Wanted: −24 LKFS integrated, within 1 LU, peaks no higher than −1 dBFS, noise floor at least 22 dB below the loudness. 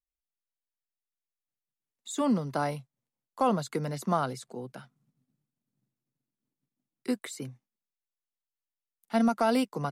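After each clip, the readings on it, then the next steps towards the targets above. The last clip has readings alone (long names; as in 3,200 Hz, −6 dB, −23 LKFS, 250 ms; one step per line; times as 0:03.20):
integrated loudness −30.0 LKFS; sample peak −15.0 dBFS; target loudness −24.0 LKFS
→ level +6 dB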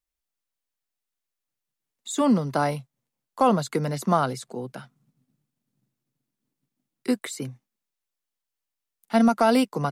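integrated loudness −24.0 LKFS; sample peak −9.0 dBFS; background noise floor −86 dBFS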